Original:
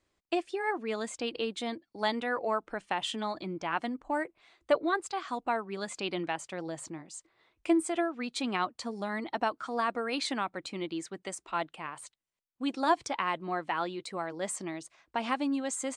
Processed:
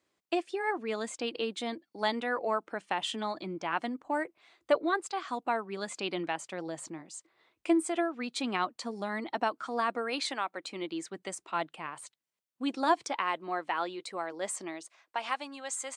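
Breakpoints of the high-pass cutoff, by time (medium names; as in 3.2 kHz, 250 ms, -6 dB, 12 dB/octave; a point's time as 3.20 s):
9.91 s 160 Hz
10.37 s 460 Hz
11.32 s 120 Hz
12.71 s 120 Hz
13.24 s 300 Hz
14.68 s 300 Hz
15.23 s 710 Hz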